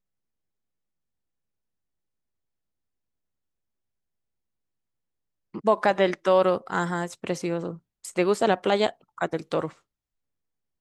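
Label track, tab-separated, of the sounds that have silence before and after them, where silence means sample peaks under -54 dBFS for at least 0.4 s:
5.540000	9.800000	sound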